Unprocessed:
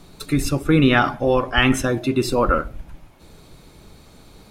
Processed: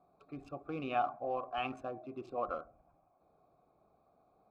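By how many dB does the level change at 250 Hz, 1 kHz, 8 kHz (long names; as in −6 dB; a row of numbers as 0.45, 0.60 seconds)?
−25.5 dB, −13.0 dB, below −40 dB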